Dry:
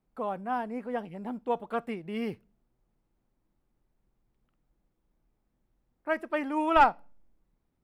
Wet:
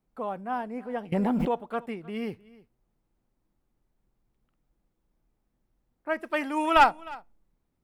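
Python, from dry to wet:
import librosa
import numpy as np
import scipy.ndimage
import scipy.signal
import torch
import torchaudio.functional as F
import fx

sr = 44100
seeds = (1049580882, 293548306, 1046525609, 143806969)

y = fx.high_shelf(x, sr, hz=2200.0, db=11.0, at=(6.23, 6.91))
y = y + 10.0 ** (-21.5 / 20.0) * np.pad(y, (int(309 * sr / 1000.0), 0))[:len(y)]
y = fx.env_flatten(y, sr, amount_pct=100, at=(1.12, 1.55))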